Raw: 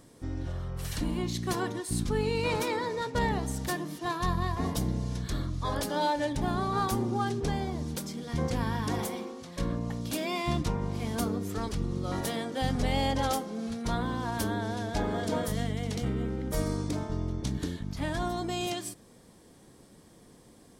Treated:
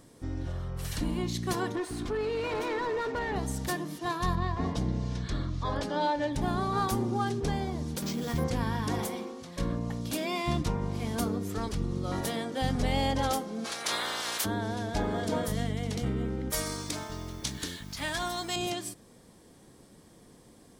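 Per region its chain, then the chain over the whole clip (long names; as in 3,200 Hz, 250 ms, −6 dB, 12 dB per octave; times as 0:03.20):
0:01.75–0:03.36: comb filter 2.8 ms, depth 51% + downward compressor 4 to 1, threshold −30 dBFS + mid-hump overdrive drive 20 dB, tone 1,100 Hz, clips at −22.5 dBFS
0:04.35–0:06.33: high-frequency loss of the air 95 metres + one half of a high-frequency compander encoder only
0:08.02–0:08.44: bad sample-rate conversion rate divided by 4×, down none, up hold + envelope flattener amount 50%
0:13.64–0:14.44: ceiling on every frequency bin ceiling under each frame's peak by 28 dB + high-pass filter 560 Hz 6 dB per octave
0:16.50–0:18.56: tilt shelving filter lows −8.5 dB, about 850 Hz + bit-depth reduction 10 bits, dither triangular
whole clip: no processing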